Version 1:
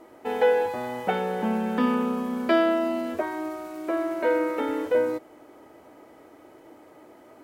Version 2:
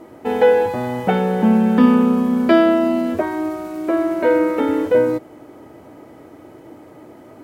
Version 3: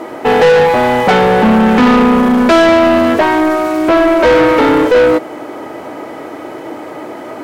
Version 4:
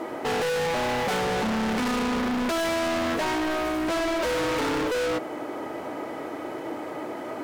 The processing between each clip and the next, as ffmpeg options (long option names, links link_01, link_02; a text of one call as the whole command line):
ffmpeg -i in.wav -af "equalizer=frequency=120:width=0.53:gain=12,volume=5dB" out.wav
ffmpeg -i in.wav -filter_complex "[0:a]asplit=2[link_01][link_02];[link_02]highpass=frequency=720:poles=1,volume=27dB,asoftclip=type=tanh:threshold=-1dB[link_03];[link_01][link_03]amix=inputs=2:normalize=0,lowpass=frequency=4000:poles=1,volume=-6dB" out.wav
ffmpeg -i in.wav -af "asoftclip=type=hard:threshold=-17.5dB,volume=-7.5dB" out.wav